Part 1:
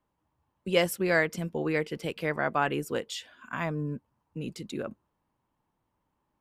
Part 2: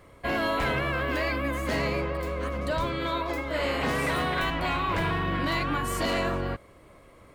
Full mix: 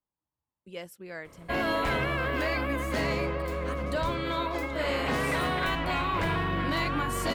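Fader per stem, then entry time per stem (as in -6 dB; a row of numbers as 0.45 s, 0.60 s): -16.0 dB, -1.0 dB; 0.00 s, 1.25 s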